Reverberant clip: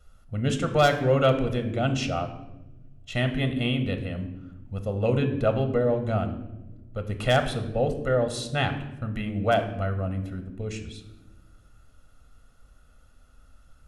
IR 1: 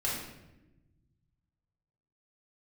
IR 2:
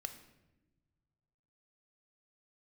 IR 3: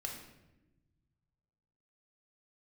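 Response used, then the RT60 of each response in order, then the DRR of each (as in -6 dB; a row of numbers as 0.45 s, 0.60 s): 2; 1.0 s, no single decay rate, 1.0 s; -6.5 dB, 7.5 dB, 0.0 dB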